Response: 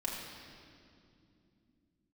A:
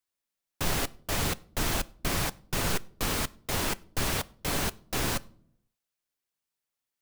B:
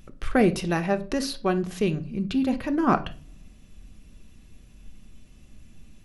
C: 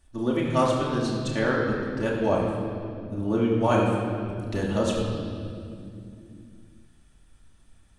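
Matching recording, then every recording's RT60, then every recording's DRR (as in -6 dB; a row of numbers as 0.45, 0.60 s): C; not exponential, 0.45 s, 2.6 s; 16.0, 7.5, -5.0 dB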